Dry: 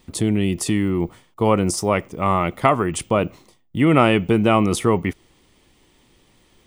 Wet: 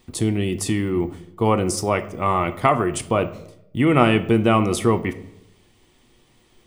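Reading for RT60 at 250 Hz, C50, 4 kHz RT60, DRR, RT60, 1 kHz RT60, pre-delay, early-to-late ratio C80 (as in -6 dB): 0.85 s, 15.0 dB, 0.55 s, 8.5 dB, 0.80 s, 0.70 s, 3 ms, 18.0 dB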